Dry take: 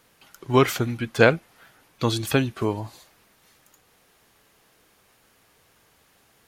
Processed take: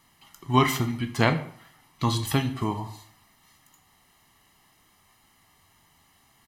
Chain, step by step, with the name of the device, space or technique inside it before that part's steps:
microphone above a desk (comb filter 1 ms, depth 74%; convolution reverb RT60 0.55 s, pre-delay 12 ms, DRR 7 dB)
level −3.5 dB

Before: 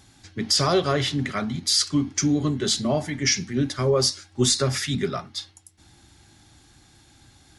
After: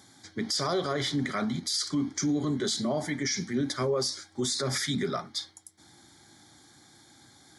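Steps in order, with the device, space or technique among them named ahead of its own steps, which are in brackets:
PA system with an anti-feedback notch (high-pass filter 170 Hz 12 dB per octave; Butterworth band-reject 2,700 Hz, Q 3.5; brickwall limiter −20.5 dBFS, peak gain reduction 11.5 dB)

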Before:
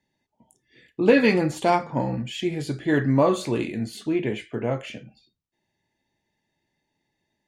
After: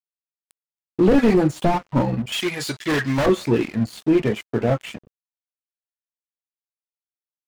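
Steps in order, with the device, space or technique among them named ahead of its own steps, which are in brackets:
reverb reduction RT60 0.76 s
early transistor amplifier (dead-zone distortion −44 dBFS; slew-rate limiting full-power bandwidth 36 Hz)
0:02.32–0:03.26: tilt shelving filter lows −10 dB, about 870 Hz
level +8.5 dB

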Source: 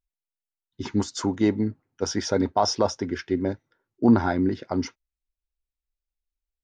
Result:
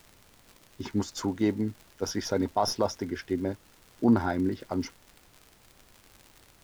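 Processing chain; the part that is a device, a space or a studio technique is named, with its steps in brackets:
record under a worn stylus (stylus tracing distortion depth 0.021 ms; surface crackle 93 per second −34 dBFS; pink noise bed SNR 28 dB)
level −4.5 dB

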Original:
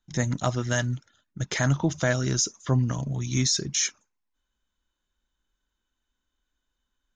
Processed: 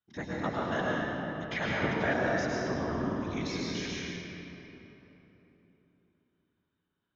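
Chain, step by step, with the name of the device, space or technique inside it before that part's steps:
whispering ghost (random phases in short frames; high-pass filter 540 Hz 6 dB per octave; convolution reverb RT60 3.6 s, pre-delay 96 ms, DRR −5.5 dB)
0:01.39–0:02.14: dynamic equaliser 2,600 Hz, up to +6 dB, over −43 dBFS, Q 1.4
high-frequency loss of the air 300 metres
level −4.5 dB

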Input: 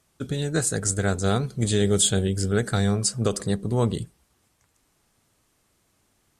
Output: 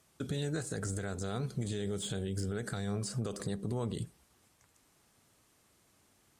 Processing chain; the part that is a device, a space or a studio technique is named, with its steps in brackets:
podcast mastering chain (high-pass filter 73 Hz 6 dB per octave; de-essing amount 65%; downward compressor 3 to 1, threshold −29 dBFS, peak gain reduction 9.5 dB; brickwall limiter −25.5 dBFS, peak gain reduction 8.5 dB; MP3 112 kbit/s 44,100 Hz)

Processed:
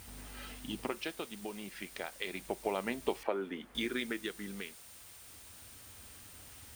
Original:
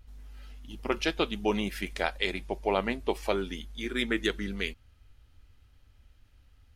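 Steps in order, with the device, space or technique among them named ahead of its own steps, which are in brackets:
medium wave at night (band-pass filter 130–4,400 Hz; downward compressor 5 to 1, threshold −43 dBFS, peak gain reduction 19 dB; amplitude tremolo 0.31 Hz, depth 71%; steady tone 9,000 Hz −70 dBFS; white noise bed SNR 14 dB)
0:03.23–0:03.75: three-way crossover with the lows and the highs turned down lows −14 dB, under 220 Hz, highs −17 dB, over 2,200 Hz
level +11.5 dB

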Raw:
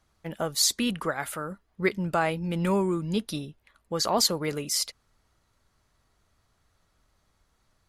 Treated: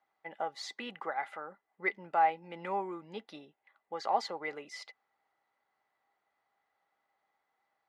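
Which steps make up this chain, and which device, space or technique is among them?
tin-can telephone (band-pass filter 440–2,600 Hz; hollow resonant body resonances 800/2,000 Hz, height 15 dB, ringing for 55 ms)
level −8 dB

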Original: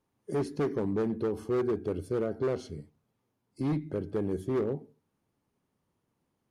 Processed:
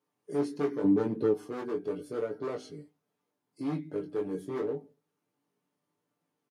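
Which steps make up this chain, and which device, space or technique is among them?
double-tracked vocal (double-tracking delay 17 ms −11.5 dB; chorus effect 0.81 Hz, delay 18.5 ms, depth 3 ms)
high-pass filter 210 Hz 12 dB per octave
comb filter 6.8 ms, depth 56%
0:00.84–0:01.34: low-shelf EQ 460 Hz +10.5 dB

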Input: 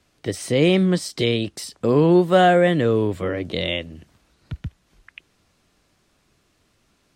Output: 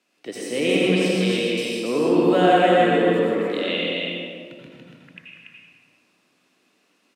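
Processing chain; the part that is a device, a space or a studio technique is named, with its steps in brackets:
stadium PA (high-pass filter 210 Hz 24 dB per octave; parametric band 2,600 Hz +8 dB 0.23 octaves; loudspeakers that aren't time-aligned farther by 53 metres −10 dB, 98 metres −4 dB; convolution reverb RT60 1.8 s, pre-delay 76 ms, DRR −4 dB)
level −7 dB

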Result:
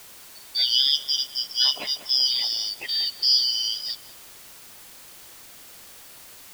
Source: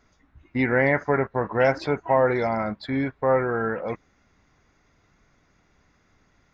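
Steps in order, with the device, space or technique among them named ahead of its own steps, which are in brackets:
0:00.75–0:02.26: Butterworth high-pass 380 Hz
0:03.07–0:03.51: spectral tilt −2.5 dB per octave
split-band scrambled radio (band-splitting scrambler in four parts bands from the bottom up 4321; band-pass filter 310–3,000 Hz; white noise bed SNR 19 dB)
feedback echo with a low-pass in the loop 192 ms, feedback 77%, low-pass 1,400 Hz, level −10.5 dB
level +7.5 dB

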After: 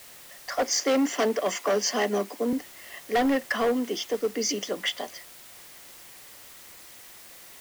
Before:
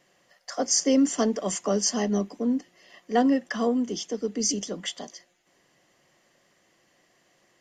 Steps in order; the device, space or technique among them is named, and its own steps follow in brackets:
drive-through speaker (band-pass filter 400–3,900 Hz; parametric band 2,200 Hz +5.5 dB 0.49 octaves; hard clipping −25.5 dBFS, distortion −10 dB; white noise bed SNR 19 dB)
0:00.72–0:02.53: Butterworth high-pass 180 Hz
level +6 dB

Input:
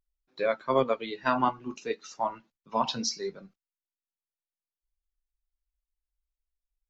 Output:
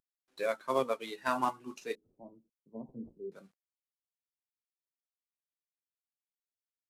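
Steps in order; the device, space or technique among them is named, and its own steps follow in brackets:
early wireless headset (high-pass filter 250 Hz 6 dB per octave; variable-slope delta modulation 64 kbit/s)
0:01.95–0:03.32: inverse Chebyshev low-pass filter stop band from 1,900 Hz, stop band 70 dB
level −4.5 dB

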